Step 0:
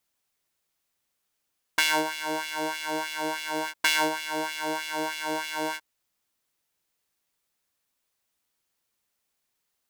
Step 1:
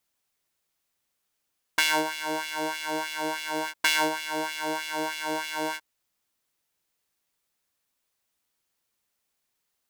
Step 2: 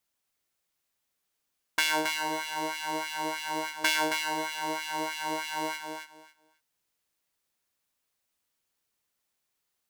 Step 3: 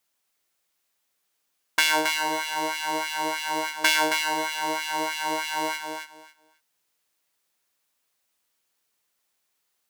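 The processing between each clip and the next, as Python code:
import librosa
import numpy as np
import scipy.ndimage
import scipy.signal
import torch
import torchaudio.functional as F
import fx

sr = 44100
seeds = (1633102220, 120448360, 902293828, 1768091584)

y1 = x
y2 = fx.echo_feedback(y1, sr, ms=271, feedback_pct=19, wet_db=-6)
y2 = F.gain(torch.from_numpy(y2), -3.0).numpy()
y3 = fx.low_shelf(y2, sr, hz=190.0, db=-9.5)
y3 = F.gain(torch.from_numpy(y3), 5.5).numpy()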